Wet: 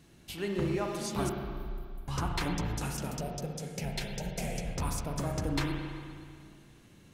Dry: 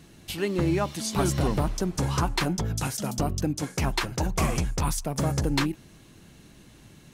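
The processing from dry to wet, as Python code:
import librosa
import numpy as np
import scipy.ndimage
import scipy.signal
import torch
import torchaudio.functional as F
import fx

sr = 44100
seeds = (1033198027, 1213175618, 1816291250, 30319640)

y = fx.cheby2_bandstop(x, sr, low_hz=270.0, high_hz=3700.0, order=4, stop_db=80, at=(1.29, 2.08))
y = fx.fixed_phaser(y, sr, hz=300.0, stages=6, at=(3.18, 4.66))
y = fx.rev_spring(y, sr, rt60_s=2.1, pass_ms=(35, 59), chirp_ms=75, drr_db=1.5)
y = y * librosa.db_to_amplitude(-8.0)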